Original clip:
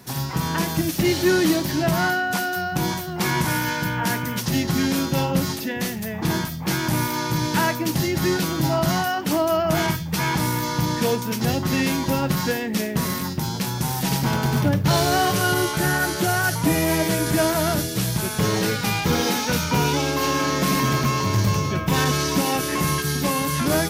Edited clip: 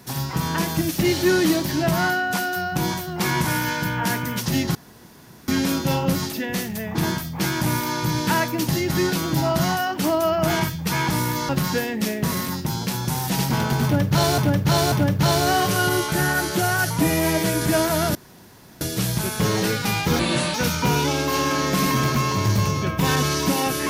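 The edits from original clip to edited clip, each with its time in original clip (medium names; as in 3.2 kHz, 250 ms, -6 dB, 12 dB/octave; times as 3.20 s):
4.75 s: insert room tone 0.73 s
10.76–12.22 s: delete
14.57–15.11 s: loop, 3 plays
17.80 s: insert room tone 0.66 s
19.18–19.43 s: speed 71%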